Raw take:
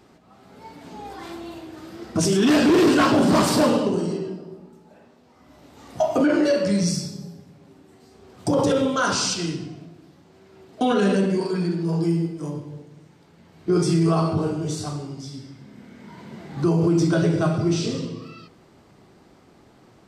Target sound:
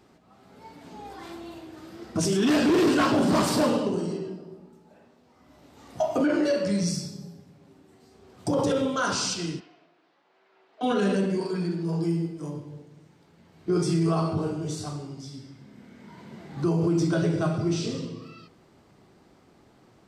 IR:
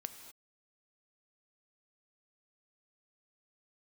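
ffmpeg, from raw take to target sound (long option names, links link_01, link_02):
-filter_complex "[0:a]asplit=3[link_01][link_02][link_03];[link_01]afade=type=out:start_time=9.59:duration=0.02[link_04];[link_02]highpass=710,lowpass=3100,afade=type=in:start_time=9.59:duration=0.02,afade=type=out:start_time=10.82:duration=0.02[link_05];[link_03]afade=type=in:start_time=10.82:duration=0.02[link_06];[link_04][link_05][link_06]amix=inputs=3:normalize=0,volume=-4.5dB"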